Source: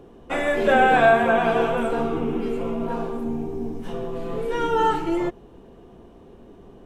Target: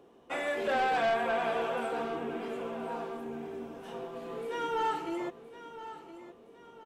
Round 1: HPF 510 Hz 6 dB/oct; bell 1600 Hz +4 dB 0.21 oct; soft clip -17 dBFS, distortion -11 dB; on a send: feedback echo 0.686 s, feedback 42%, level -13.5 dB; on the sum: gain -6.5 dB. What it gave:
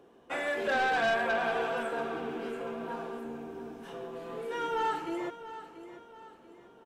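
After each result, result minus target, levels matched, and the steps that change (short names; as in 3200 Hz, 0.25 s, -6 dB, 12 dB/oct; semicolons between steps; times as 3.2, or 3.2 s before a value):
echo 0.332 s early; 2000 Hz band +3.5 dB
change: feedback echo 1.018 s, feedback 42%, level -13.5 dB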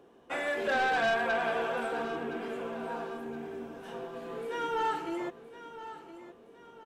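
2000 Hz band +3.5 dB
change: bell 1600 Hz -2.5 dB 0.21 oct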